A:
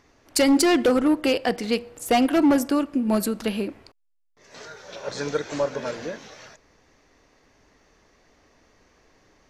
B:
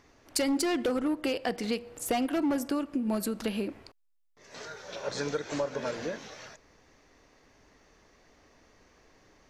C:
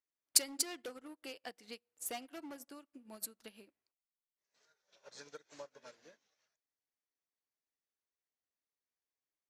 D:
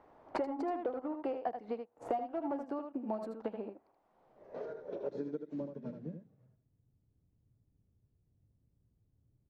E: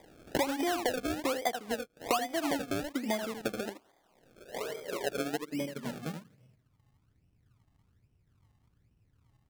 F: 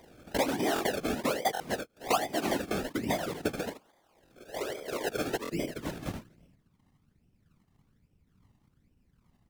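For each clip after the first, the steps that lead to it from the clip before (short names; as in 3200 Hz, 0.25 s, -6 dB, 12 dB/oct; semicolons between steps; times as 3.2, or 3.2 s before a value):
compressor 3:1, threshold -27 dBFS, peak gain reduction 9 dB; gain -1.5 dB
tilt +2.5 dB/oct; upward expander 2.5:1, over -46 dBFS; gain -2.5 dB
low-pass sweep 800 Hz -> 110 Hz, 4.11–6.5; echo 78 ms -8 dB; three-band squash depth 100%; gain +9.5 dB
decimation with a swept rate 31×, swing 100% 1.2 Hz; gain +5 dB
wow and flutter 23 cents; whisperiser; stuck buffer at 0.74/1.53/4.24/5.43, samples 1024, times 2; gain +1.5 dB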